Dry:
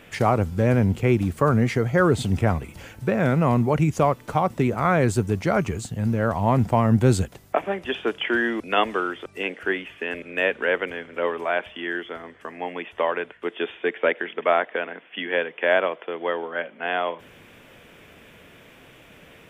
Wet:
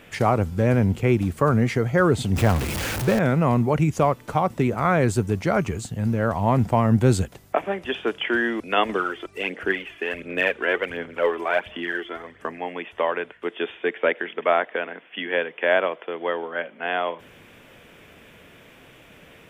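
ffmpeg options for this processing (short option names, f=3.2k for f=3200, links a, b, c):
-filter_complex "[0:a]asettb=1/sr,asplit=3[a][b][c];[a]atrim=end=2.364[d];[b]atrim=start=2.36:end=3.19,asetpts=PTS-STARTPTS,afade=t=in:d=0.004:c=qsin,afade=t=out:st=0.826:d=0.004:c=qsin,aeval=exprs='val(0)+0.5*0.075*sgn(val(0))':c=same[e];[c]atrim=start=3.186[f];[d][e]acrossfade=d=0.004:c1=hsin:c2=qsin[g];[g][f]acrossfade=d=0.004:c1=qsin:c2=hsin,asettb=1/sr,asplit=3[h][i][j];[h]atrim=end=8.894[k];[i]atrim=start=8.89:end=12.59,asetpts=PTS-STARTPTS,afade=t=in:d=0.004:c=qsin,afade=t=out:st=3.696:d=0.004:c=qsin,aphaser=in_gain=1:out_gain=1:delay=3:decay=0.51:speed=1.4:type=sinusoidal[l];[j]atrim=start=12.586[m];[k][l]acrossfade=d=0.004:c1=hsin:c2=qsin[n];[n][m]acrossfade=d=0.004:c1=qsin:c2=hsin"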